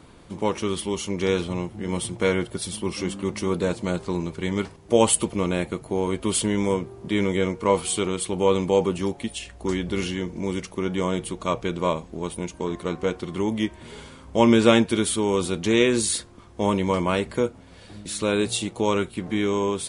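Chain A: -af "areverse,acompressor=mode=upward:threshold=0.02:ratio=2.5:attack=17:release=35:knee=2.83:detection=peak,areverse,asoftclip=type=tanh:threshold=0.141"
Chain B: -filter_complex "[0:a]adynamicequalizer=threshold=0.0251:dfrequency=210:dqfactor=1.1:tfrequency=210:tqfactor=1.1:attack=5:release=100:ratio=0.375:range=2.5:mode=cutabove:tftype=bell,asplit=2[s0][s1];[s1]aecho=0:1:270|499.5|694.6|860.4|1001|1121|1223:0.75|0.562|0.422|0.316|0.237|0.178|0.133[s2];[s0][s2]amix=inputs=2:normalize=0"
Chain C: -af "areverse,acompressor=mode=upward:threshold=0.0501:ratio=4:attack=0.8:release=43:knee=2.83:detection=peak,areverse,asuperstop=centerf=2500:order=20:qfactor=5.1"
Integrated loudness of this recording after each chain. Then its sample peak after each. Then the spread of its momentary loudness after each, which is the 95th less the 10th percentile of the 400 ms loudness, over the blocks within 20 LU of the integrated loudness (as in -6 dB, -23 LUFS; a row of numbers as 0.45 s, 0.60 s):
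-27.0 LUFS, -22.0 LUFS, -24.5 LUFS; -17.0 dBFS, -3.0 dBFS, -2.0 dBFS; 8 LU, 8 LU, 9 LU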